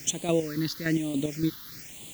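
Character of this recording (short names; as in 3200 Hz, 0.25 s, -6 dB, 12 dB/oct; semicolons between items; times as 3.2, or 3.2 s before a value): chopped level 3.5 Hz, depth 60%, duty 40%; a quantiser's noise floor 8-bit, dither triangular; phasing stages 6, 1.1 Hz, lowest notch 640–1500 Hz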